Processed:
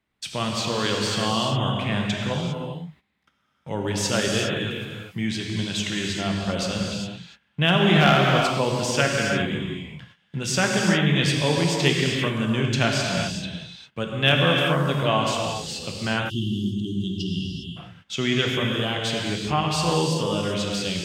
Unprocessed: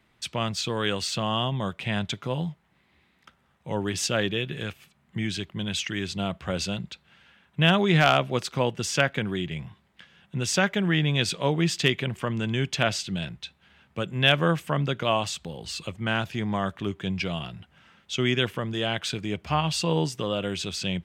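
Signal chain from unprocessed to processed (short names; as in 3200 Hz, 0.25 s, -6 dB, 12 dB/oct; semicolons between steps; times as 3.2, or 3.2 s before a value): non-linear reverb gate 0.43 s flat, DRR -1 dB; spectral delete 16.3–17.77, 400–2700 Hz; gate -48 dBFS, range -13 dB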